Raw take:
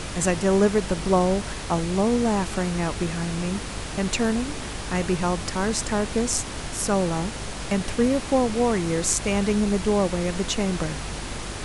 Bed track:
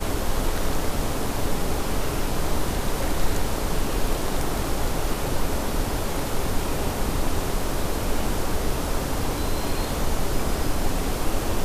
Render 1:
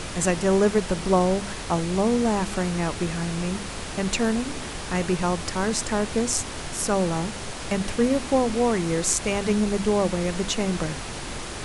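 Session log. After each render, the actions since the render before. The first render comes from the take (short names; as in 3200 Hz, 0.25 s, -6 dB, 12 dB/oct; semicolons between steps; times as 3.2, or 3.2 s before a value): de-hum 50 Hz, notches 6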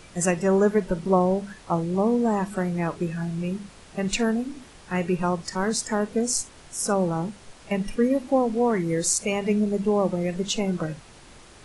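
noise print and reduce 15 dB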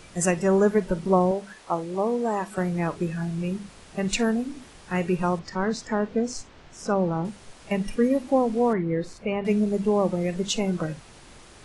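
1.31–2.58 tone controls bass -12 dB, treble -1 dB; 5.39–7.25 air absorption 150 m; 8.73–9.45 air absorption 400 m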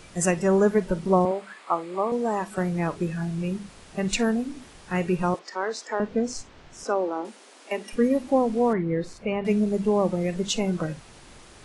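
1.25–2.12 speaker cabinet 280–9400 Hz, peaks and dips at 470 Hz -3 dB, 1200 Hz +8 dB, 2200 Hz +6 dB, 5900 Hz -10 dB; 5.34–6 HPF 360 Hz 24 dB/oct; 6.84–7.93 steep high-pass 250 Hz 48 dB/oct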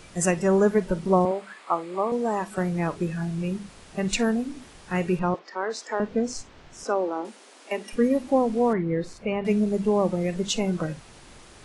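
5.19–5.7 air absorption 150 m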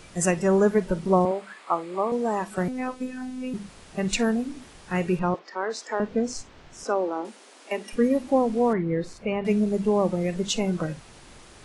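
2.68–3.54 robotiser 255 Hz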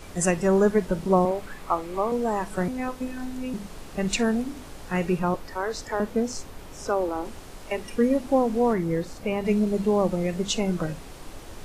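add bed track -18 dB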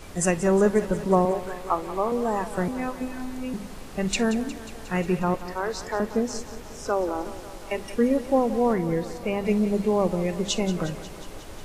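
thinning echo 0.18 s, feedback 72%, high-pass 170 Hz, level -14 dB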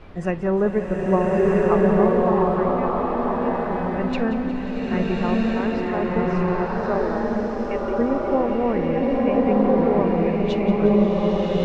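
air absorption 350 m; bloom reverb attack 1.34 s, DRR -5 dB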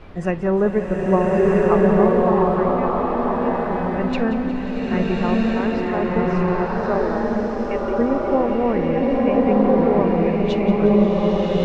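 gain +2 dB; limiter -3 dBFS, peak gain reduction 1 dB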